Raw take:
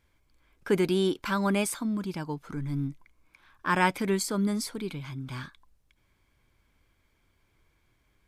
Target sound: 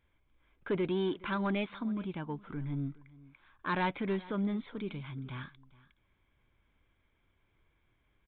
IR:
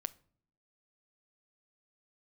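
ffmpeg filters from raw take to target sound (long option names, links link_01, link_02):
-af "aresample=8000,asoftclip=type=tanh:threshold=-20.5dB,aresample=44100,aecho=1:1:419:0.0891,volume=-4dB"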